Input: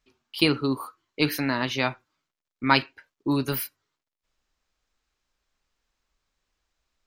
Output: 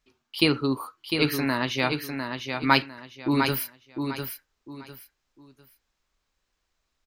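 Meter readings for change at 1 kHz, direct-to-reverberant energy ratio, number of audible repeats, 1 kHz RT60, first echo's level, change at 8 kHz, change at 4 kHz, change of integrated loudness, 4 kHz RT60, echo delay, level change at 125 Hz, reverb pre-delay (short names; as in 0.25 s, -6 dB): +1.0 dB, none, 3, none, -6.0 dB, +1.0 dB, +1.0 dB, -0.5 dB, none, 0.702 s, +1.0 dB, none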